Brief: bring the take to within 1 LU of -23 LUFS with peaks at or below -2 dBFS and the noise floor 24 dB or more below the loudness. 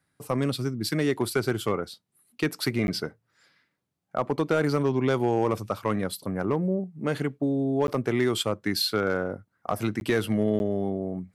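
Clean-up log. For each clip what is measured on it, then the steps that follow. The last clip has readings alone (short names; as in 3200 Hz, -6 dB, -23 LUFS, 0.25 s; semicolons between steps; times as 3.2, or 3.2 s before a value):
clipped 0.4%; flat tops at -15.5 dBFS; dropouts 4; longest dropout 11 ms; loudness -27.5 LUFS; peak -15.5 dBFS; loudness target -23.0 LUFS
-> clip repair -15.5 dBFS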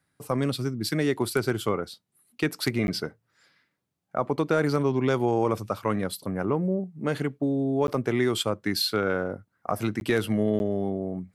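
clipped 0.0%; dropouts 4; longest dropout 11 ms
-> interpolate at 2.87/7.87/10/10.59, 11 ms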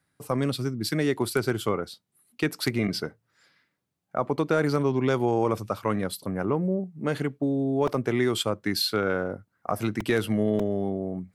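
dropouts 0; loudness -27.0 LUFS; peak -8.5 dBFS; loudness target -23.0 LUFS
-> gain +4 dB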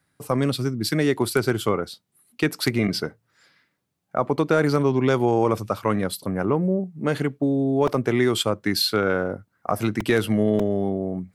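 loudness -23.0 LUFS; peak -4.5 dBFS; noise floor -73 dBFS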